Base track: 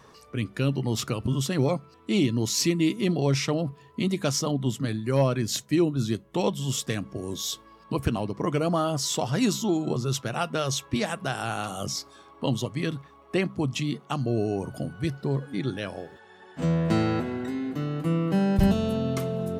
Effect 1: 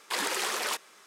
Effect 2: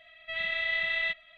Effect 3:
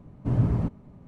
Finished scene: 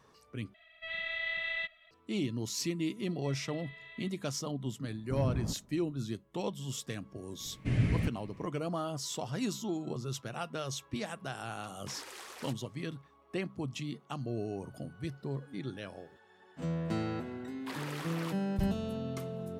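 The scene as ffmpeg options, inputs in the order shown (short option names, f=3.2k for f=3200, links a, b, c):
-filter_complex "[2:a]asplit=2[a][b];[3:a]asplit=2[c][d];[1:a]asplit=2[e][f];[0:a]volume=-10.5dB[g];[b]alimiter=level_in=3.5dB:limit=-24dB:level=0:latency=1:release=71,volume=-3.5dB[h];[d]highshelf=f=1.5k:t=q:w=3:g=12.5[i];[f]equalizer=f=7.6k:t=o:w=1.9:g=-9.5[j];[g]asplit=2[k][l];[k]atrim=end=0.544[m];[a]atrim=end=1.37,asetpts=PTS-STARTPTS,volume=-6dB[n];[l]atrim=start=1.906[o];[h]atrim=end=1.37,asetpts=PTS-STARTPTS,volume=-16.5dB,afade=t=in:d=0.004:c=hsin,afade=t=out:st=1.366:d=0.004:c=hsin,adelay=2960[p];[c]atrim=end=1.07,asetpts=PTS-STARTPTS,volume=-10dB,afade=t=in:d=0.004:c=hsin,afade=t=out:st=1.066:d=0.004:c=hsin,adelay=213885S[q];[i]atrim=end=1.07,asetpts=PTS-STARTPTS,volume=-5.5dB,afade=t=in:d=0.004:c=hsin,afade=t=out:st=1.066:d=0.004:c=hsin,adelay=7400[r];[e]atrim=end=1.06,asetpts=PTS-STARTPTS,volume=-17dB,afade=t=in:d=0.004:c=hsin,afade=t=out:st=1.056:d=0.004:c=hsin,adelay=11760[s];[j]atrim=end=1.06,asetpts=PTS-STARTPTS,volume=-10dB,afade=t=in:d=0.1,afade=t=out:st=0.96:d=0.1,adelay=17560[t];[m][n]acrossfade=d=0.004:c1=hsin:c2=hsin[u];[u][o]acrossfade=d=0.004:c1=hsin:c2=hsin[v];[v][p][q][r][s][t]amix=inputs=6:normalize=0"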